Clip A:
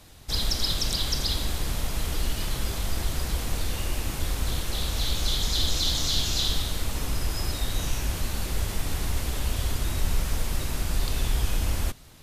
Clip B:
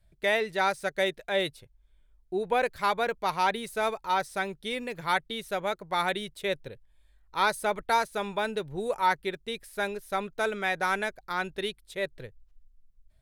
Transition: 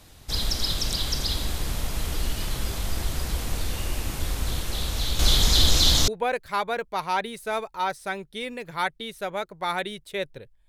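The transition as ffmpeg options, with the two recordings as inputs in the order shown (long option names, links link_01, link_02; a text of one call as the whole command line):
ffmpeg -i cue0.wav -i cue1.wav -filter_complex "[0:a]asettb=1/sr,asplit=3[link_01][link_02][link_03];[link_01]atrim=end=5.194[link_04];[link_02]atrim=start=5.19:end=6.08,asetpts=PTS-STARTPTS,afade=type=in:duration=0.004:curve=qsin,afade=type=out:start_time=0.886:duration=0.004:curve=qsin,acontrast=73[link_05];[link_03]atrim=start=6.076[link_06];[link_04][link_05]acrossfade=duration=0.004:curve1=hsin:curve2=qsin[link_07];[link_07][link_06]acrossfade=duration=0.004:curve1=qsin:curve2=hsin,apad=whole_dur=10.68,atrim=end=10.68,atrim=end=6.082[link_08];[1:a]atrim=start=2.378:end=6.98[link_09];[link_08][link_09]acrossfade=duration=0.004:curve1=hsin:curve2=hsin" out.wav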